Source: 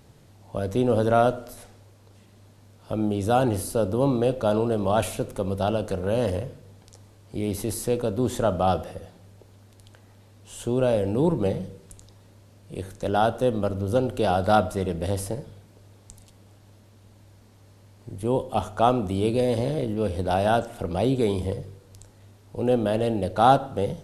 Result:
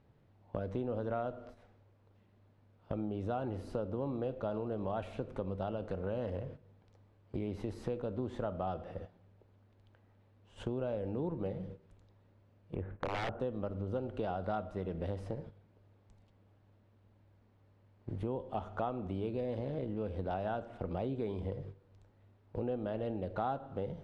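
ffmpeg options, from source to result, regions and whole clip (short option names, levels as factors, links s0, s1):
-filter_complex "[0:a]asettb=1/sr,asplit=3[s0][s1][s2];[s0]atrim=end=12.754[s3];[s1]atrim=start=12.75:end=13.4,asetpts=PTS-STARTPTS,afade=t=in:d=0.004:c=qsin,afade=t=out:st=0.646:d=0.004:c=qsin,lowpass=f=2300:w=0.5412,lowpass=f=2300:w=1.3066,equalizer=f=63:w=1.1:g=6.5,aeval=exprs='(mod(7.08*val(0)+1,2)-1)/7.08':c=same[s4];[s2]atrim=start=13.396[s5];[s3][s4]acrossfade=d=0.004:c1=hsin:c2=qsin[s6];[s6][s5]acrossfade=d=0.004:c1=qsin:c2=hsin,agate=range=0.224:threshold=0.0112:ratio=16:detection=peak,lowpass=2400,acompressor=threshold=0.0158:ratio=4"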